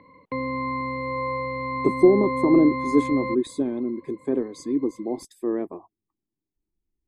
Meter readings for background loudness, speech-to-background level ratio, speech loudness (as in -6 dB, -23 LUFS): -28.5 LUFS, 5.0 dB, -23.5 LUFS